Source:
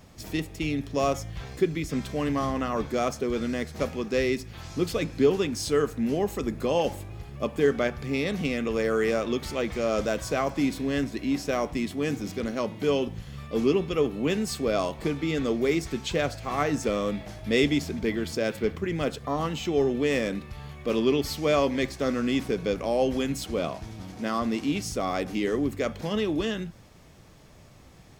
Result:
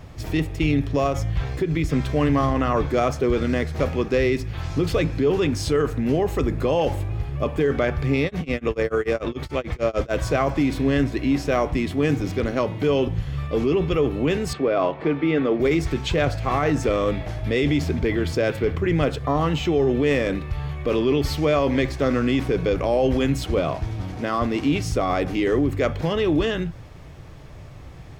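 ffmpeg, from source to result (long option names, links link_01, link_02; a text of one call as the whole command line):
ffmpeg -i in.wav -filter_complex "[0:a]asettb=1/sr,asplit=3[link_01][link_02][link_03];[link_01]atrim=end=1.064[link_04];[link_02]atrim=start=1.06:end=1.88,asetpts=PTS-STARTPTS,afade=type=in:duration=0.004:curve=qsin,afade=type=out:start_time=0.816:duration=0.004:curve=qsin,acompressor=threshold=-26dB:ratio=6:attack=3.2:release=140:knee=1:detection=peak[link_05];[link_03]atrim=start=1.876[link_06];[link_04][link_05]acrossfade=duration=0.004:curve1=hsin:curve2=qsin[link_07];[link_07][link_06]acrossfade=duration=0.004:curve1=qsin:curve2=hsin,asplit=3[link_08][link_09][link_10];[link_08]afade=type=out:start_time=8.24:duration=0.02[link_11];[link_09]tremolo=f=6.8:d=0.98,afade=type=in:start_time=8.24:duration=0.02,afade=type=out:start_time=10.12:duration=0.02[link_12];[link_10]afade=type=in:start_time=10.12:duration=0.02[link_13];[link_11][link_12][link_13]amix=inputs=3:normalize=0,asettb=1/sr,asplit=3[link_14][link_15][link_16];[link_14]atrim=end=14.534[link_17];[link_15]atrim=start=14.53:end=15.6,asetpts=PTS-STARTPTS,afade=type=in:duration=0.004:curve=qsin,afade=type=out:start_time=1.066:duration=0.004:curve=qsin,highpass=210,lowpass=2600[link_18];[link_16]atrim=start=15.596[link_19];[link_17][link_18]acrossfade=duration=0.004:curve1=hsin:curve2=qsin[link_20];[link_20][link_19]acrossfade=duration=0.004:curve1=qsin:curve2=hsin,bass=frequency=250:gain=6,treble=frequency=4000:gain=-9,alimiter=limit=-19dB:level=0:latency=1:release=13,equalizer=frequency=210:width=4:gain=-13,volume=8dB" out.wav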